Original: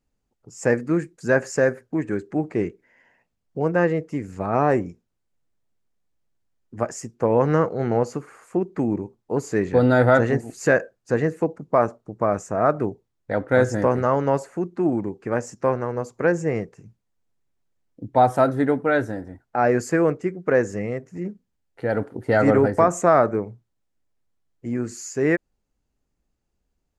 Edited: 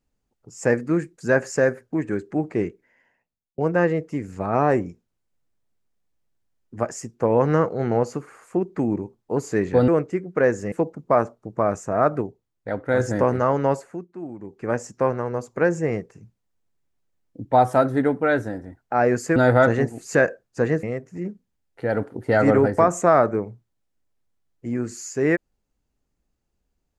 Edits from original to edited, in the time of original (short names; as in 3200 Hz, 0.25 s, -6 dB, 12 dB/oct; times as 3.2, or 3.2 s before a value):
2.6–3.58 fade out
9.88–11.35 swap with 19.99–20.83
12.84–13.63 gain -3.5 dB
14.36–15.35 dip -13 dB, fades 0.34 s